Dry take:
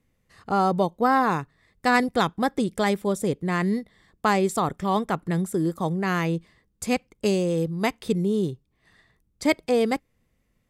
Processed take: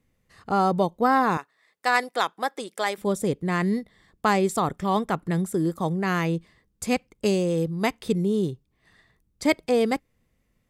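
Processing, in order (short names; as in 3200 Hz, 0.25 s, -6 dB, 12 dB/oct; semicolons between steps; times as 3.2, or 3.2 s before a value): 1.37–2.98 HPF 570 Hz 12 dB/oct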